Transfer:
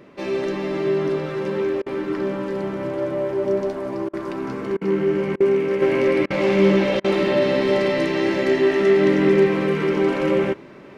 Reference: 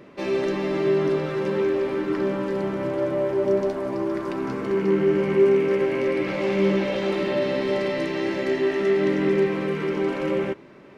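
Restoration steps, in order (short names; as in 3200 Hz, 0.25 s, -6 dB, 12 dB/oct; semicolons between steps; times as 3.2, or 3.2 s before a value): interpolate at 1.82/4.09/4.77/5.36/6.26/7, 42 ms; gain correction -5 dB, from 5.82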